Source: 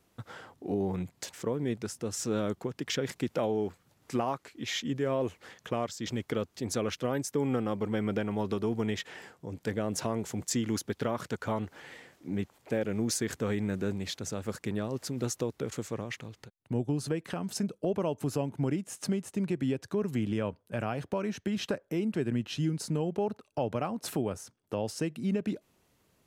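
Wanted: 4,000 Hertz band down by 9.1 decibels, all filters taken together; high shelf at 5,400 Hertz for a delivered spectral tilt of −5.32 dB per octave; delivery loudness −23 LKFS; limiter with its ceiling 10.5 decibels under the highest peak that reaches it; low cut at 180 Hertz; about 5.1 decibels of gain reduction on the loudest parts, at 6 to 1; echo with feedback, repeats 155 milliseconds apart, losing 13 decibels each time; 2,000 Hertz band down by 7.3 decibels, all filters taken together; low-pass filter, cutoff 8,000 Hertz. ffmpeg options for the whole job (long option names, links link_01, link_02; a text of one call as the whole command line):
ffmpeg -i in.wav -af "highpass=180,lowpass=8000,equalizer=frequency=2000:width_type=o:gain=-7,equalizer=frequency=4000:width_type=o:gain=-6.5,highshelf=frequency=5400:gain=-7,acompressor=threshold=-32dB:ratio=6,alimiter=level_in=8dB:limit=-24dB:level=0:latency=1,volume=-8dB,aecho=1:1:155|310|465:0.224|0.0493|0.0108,volume=19.5dB" out.wav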